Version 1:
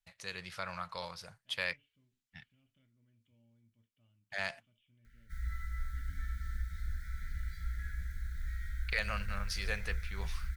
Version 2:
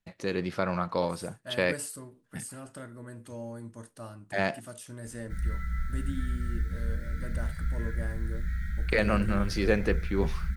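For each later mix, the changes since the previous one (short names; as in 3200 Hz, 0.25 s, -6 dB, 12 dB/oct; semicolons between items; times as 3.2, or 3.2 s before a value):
second voice: remove vocal tract filter i; master: remove passive tone stack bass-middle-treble 10-0-10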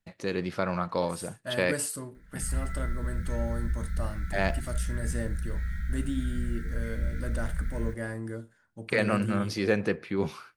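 second voice +5.5 dB; background: entry -2.90 s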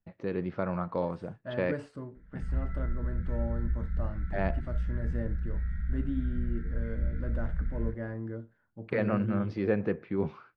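master: add tape spacing loss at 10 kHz 44 dB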